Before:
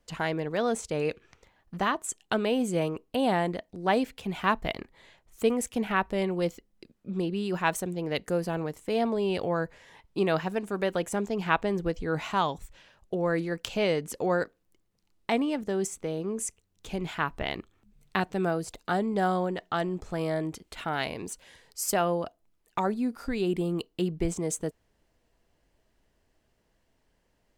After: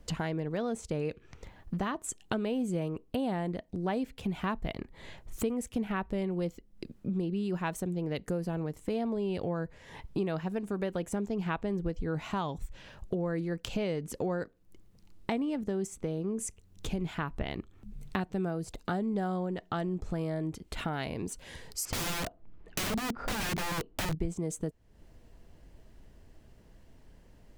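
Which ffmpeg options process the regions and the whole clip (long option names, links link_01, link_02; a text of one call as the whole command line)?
ffmpeg -i in.wav -filter_complex "[0:a]asettb=1/sr,asplit=3[link_01][link_02][link_03];[link_01]atrim=end=21.854[link_04];[link_02]atrim=start=21.85:end=24.15,asetpts=PTS-STARTPTS,afade=type=in:duration=0.004:curve=qsin,afade=type=out:start_time=2.296:duration=0.004:curve=qsin,lowpass=2200,aeval=exprs='(mod(35.5*val(0)+1,2)-1)/35.5':channel_layout=same,acontrast=84[link_05];[link_03]atrim=start=24.146[link_06];[link_04][link_05]acrossfade=duration=0.004:curve1=hsin:curve2=qsin[link_07];[link_07][link_06]acrossfade=duration=0.004:curve1=qsin:curve2=hsin,lowshelf=frequency=330:gain=11.5,acompressor=threshold=-42dB:ratio=3,volume=6.5dB" out.wav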